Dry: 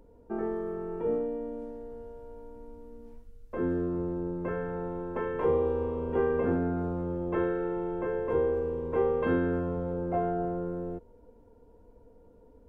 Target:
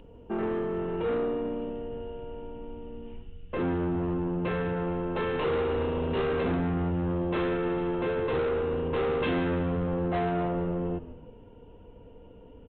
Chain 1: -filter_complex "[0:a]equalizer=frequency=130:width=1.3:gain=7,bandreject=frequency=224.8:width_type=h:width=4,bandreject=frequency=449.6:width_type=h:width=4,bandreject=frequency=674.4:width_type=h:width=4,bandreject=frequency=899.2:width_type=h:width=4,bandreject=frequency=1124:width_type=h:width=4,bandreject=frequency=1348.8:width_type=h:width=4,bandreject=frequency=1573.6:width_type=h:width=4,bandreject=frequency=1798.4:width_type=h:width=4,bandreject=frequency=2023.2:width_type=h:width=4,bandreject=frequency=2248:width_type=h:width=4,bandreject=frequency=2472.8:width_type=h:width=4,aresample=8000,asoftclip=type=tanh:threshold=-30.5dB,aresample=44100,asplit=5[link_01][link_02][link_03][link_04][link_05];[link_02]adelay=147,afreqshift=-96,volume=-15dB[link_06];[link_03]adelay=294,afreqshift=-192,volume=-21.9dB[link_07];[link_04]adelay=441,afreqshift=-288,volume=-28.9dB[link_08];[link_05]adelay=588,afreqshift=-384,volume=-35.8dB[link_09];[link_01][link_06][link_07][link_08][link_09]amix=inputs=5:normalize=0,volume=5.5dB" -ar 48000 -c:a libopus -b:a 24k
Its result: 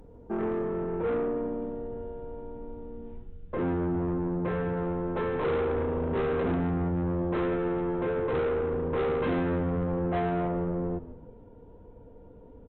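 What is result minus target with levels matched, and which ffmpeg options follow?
4,000 Hz band −7.0 dB
-filter_complex "[0:a]lowpass=frequency=2900:width_type=q:width=12,equalizer=frequency=130:width=1.3:gain=7,bandreject=frequency=224.8:width_type=h:width=4,bandreject=frequency=449.6:width_type=h:width=4,bandreject=frequency=674.4:width_type=h:width=4,bandreject=frequency=899.2:width_type=h:width=4,bandreject=frequency=1124:width_type=h:width=4,bandreject=frequency=1348.8:width_type=h:width=4,bandreject=frequency=1573.6:width_type=h:width=4,bandreject=frequency=1798.4:width_type=h:width=4,bandreject=frequency=2023.2:width_type=h:width=4,bandreject=frequency=2248:width_type=h:width=4,bandreject=frequency=2472.8:width_type=h:width=4,aresample=8000,asoftclip=type=tanh:threshold=-30.5dB,aresample=44100,asplit=5[link_01][link_02][link_03][link_04][link_05];[link_02]adelay=147,afreqshift=-96,volume=-15dB[link_06];[link_03]adelay=294,afreqshift=-192,volume=-21.9dB[link_07];[link_04]adelay=441,afreqshift=-288,volume=-28.9dB[link_08];[link_05]adelay=588,afreqshift=-384,volume=-35.8dB[link_09];[link_01][link_06][link_07][link_08][link_09]amix=inputs=5:normalize=0,volume=5.5dB" -ar 48000 -c:a libopus -b:a 24k

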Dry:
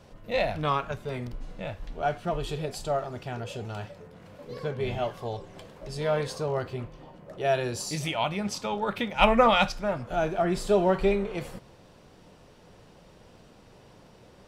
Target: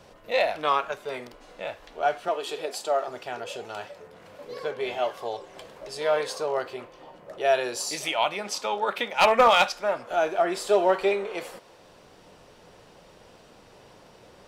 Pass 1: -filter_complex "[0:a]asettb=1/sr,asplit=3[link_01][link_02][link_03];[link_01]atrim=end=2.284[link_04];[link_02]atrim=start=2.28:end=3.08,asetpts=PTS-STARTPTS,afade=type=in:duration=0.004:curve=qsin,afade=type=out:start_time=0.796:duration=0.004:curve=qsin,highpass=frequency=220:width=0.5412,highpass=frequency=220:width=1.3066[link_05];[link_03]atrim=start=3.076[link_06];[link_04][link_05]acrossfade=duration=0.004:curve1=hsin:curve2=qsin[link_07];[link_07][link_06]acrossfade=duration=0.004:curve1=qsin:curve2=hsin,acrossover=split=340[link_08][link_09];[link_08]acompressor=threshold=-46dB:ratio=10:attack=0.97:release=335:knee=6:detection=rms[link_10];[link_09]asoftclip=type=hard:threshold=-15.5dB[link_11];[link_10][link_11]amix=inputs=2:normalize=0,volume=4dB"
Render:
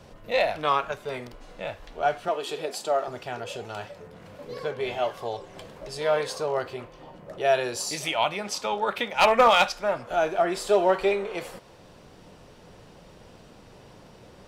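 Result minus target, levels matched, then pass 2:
downward compressor: peak gain reduction −11 dB
-filter_complex "[0:a]asettb=1/sr,asplit=3[link_01][link_02][link_03];[link_01]atrim=end=2.284[link_04];[link_02]atrim=start=2.28:end=3.08,asetpts=PTS-STARTPTS,afade=type=in:duration=0.004:curve=qsin,afade=type=out:start_time=0.796:duration=0.004:curve=qsin,highpass=frequency=220:width=0.5412,highpass=frequency=220:width=1.3066[link_05];[link_03]atrim=start=3.076[link_06];[link_04][link_05]acrossfade=duration=0.004:curve1=hsin:curve2=qsin[link_07];[link_07][link_06]acrossfade=duration=0.004:curve1=qsin:curve2=hsin,acrossover=split=340[link_08][link_09];[link_08]acompressor=threshold=-58dB:ratio=10:attack=0.97:release=335:knee=6:detection=rms[link_10];[link_09]asoftclip=type=hard:threshold=-15.5dB[link_11];[link_10][link_11]amix=inputs=2:normalize=0,volume=4dB"

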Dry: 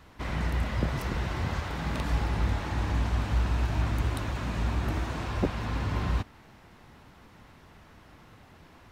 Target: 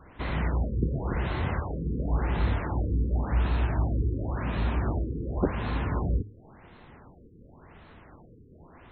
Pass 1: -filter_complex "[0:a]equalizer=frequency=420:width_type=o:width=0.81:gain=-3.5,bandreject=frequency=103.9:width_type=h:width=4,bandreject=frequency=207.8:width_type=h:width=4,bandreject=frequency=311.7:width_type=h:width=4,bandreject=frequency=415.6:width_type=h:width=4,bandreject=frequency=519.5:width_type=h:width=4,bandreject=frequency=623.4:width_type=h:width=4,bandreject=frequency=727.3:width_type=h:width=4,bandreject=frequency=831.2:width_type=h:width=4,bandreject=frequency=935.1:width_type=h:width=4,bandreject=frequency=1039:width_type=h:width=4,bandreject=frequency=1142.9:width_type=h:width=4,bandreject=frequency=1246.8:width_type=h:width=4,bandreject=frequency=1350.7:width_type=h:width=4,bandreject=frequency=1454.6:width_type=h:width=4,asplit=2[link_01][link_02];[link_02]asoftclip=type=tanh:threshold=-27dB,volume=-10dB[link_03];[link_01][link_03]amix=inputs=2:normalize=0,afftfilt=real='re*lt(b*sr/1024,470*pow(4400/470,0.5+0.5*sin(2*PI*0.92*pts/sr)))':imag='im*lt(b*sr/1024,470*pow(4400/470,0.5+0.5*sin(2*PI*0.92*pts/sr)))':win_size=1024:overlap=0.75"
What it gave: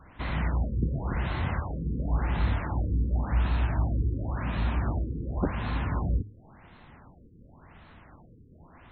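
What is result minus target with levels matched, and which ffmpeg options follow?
500 Hz band −4.0 dB
-filter_complex "[0:a]equalizer=frequency=420:width_type=o:width=0.81:gain=3,bandreject=frequency=103.9:width_type=h:width=4,bandreject=frequency=207.8:width_type=h:width=4,bandreject=frequency=311.7:width_type=h:width=4,bandreject=frequency=415.6:width_type=h:width=4,bandreject=frequency=519.5:width_type=h:width=4,bandreject=frequency=623.4:width_type=h:width=4,bandreject=frequency=727.3:width_type=h:width=4,bandreject=frequency=831.2:width_type=h:width=4,bandreject=frequency=935.1:width_type=h:width=4,bandreject=frequency=1039:width_type=h:width=4,bandreject=frequency=1142.9:width_type=h:width=4,bandreject=frequency=1246.8:width_type=h:width=4,bandreject=frequency=1350.7:width_type=h:width=4,bandreject=frequency=1454.6:width_type=h:width=4,asplit=2[link_01][link_02];[link_02]asoftclip=type=tanh:threshold=-27dB,volume=-10dB[link_03];[link_01][link_03]amix=inputs=2:normalize=0,afftfilt=real='re*lt(b*sr/1024,470*pow(4400/470,0.5+0.5*sin(2*PI*0.92*pts/sr)))':imag='im*lt(b*sr/1024,470*pow(4400/470,0.5+0.5*sin(2*PI*0.92*pts/sr)))':win_size=1024:overlap=0.75"

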